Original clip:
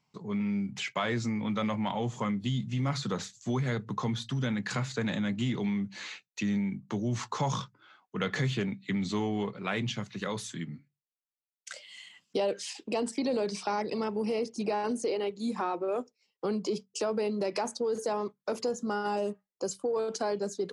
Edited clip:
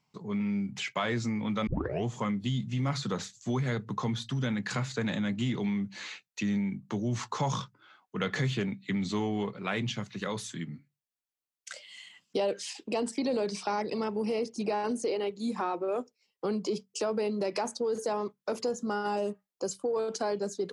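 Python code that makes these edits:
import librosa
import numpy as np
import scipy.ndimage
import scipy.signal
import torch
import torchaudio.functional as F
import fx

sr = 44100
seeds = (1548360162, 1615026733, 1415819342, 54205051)

y = fx.edit(x, sr, fx.tape_start(start_s=1.67, length_s=0.38), tone=tone)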